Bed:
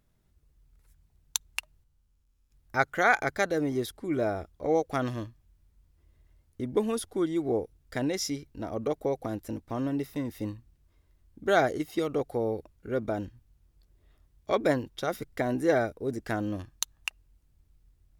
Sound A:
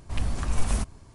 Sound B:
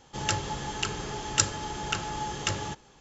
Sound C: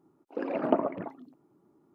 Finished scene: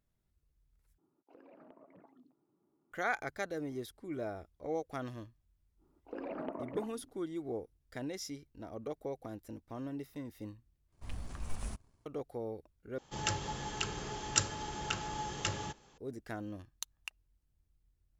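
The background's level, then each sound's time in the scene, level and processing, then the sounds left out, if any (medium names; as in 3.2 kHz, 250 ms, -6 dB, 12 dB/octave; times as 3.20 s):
bed -11 dB
0.98 s: replace with C -12 dB + compression 8:1, threshold -43 dBFS
5.76 s: add C -6 dB, fades 0.10 s + compression 4:1, threshold -31 dBFS
10.92 s: replace with A -14 dB + companding laws mixed up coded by A
12.98 s: replace with B -6 dB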